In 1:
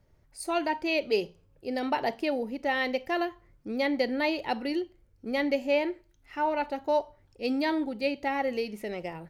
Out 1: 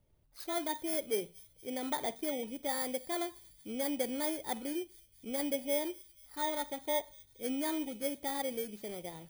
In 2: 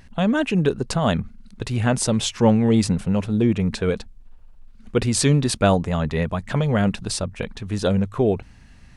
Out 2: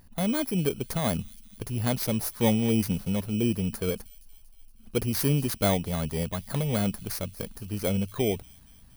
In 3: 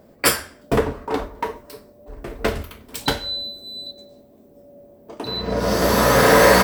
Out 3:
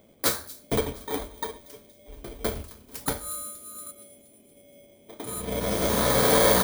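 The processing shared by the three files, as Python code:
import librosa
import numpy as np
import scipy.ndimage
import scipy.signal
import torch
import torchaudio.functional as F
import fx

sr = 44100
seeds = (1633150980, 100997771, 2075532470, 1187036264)

y = fx.bit_reversed(x, sr, seeds[0], block=16)
y = fx.echo_wet_highpass(y, sr, ms=235, feedback_pct=62, hz=4000.0, wet_db=-17)
y = y * 10.0 ** (-7.0 / 20.0)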